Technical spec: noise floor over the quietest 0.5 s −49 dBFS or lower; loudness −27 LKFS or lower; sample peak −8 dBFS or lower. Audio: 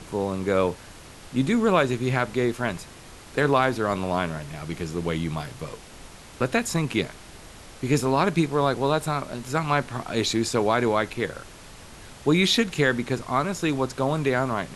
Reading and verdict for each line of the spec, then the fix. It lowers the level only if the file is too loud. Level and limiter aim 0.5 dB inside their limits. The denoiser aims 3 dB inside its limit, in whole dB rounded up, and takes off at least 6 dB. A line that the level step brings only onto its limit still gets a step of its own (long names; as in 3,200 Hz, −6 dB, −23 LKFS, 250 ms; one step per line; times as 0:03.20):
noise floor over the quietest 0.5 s −45 dBFS: out of spec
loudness −24.5 LKFS: out of spec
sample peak −6.5 dBFS: out of spec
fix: broadband denoise 6 dB, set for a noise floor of −45 dBFS
level −3 dB